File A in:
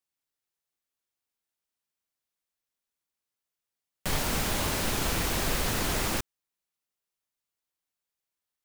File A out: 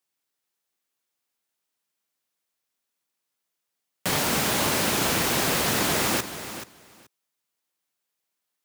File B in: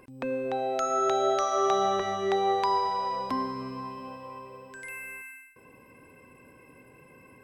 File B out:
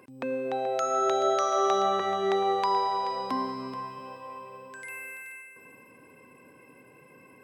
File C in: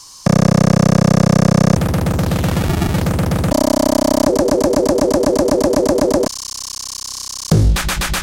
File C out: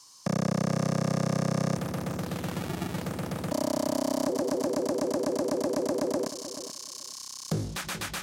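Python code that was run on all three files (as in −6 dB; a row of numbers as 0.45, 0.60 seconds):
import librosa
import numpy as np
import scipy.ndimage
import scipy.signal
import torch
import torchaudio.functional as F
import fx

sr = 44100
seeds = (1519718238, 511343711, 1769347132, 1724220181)

y = scipy.signal.sosfilt(scipy.signal.butter(2, 140.0, 'highpass', fs=sr, output='sos'), x)
y = fx.echo_feedback(y, sr, ms=430, feedback_pct=15, wet_db=-12.0)
y = y * 10.0 ** (-30 / 20.0) / np.sqrt(np.mean(np.square(y)))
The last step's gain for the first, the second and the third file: +6.0, 0.0, −14.5 decibels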